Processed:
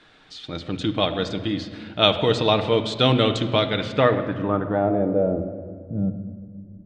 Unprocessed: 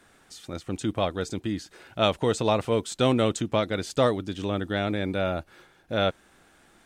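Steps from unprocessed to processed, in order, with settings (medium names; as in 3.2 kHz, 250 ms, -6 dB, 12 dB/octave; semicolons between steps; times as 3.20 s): low-pass sweep 3.8 kHz -> 190 Hz, 3.67–5.92 s; reverberation RT60 2.0 s, pre-delay 6 ms, DRR 6.5 dB; trim +2.5 dB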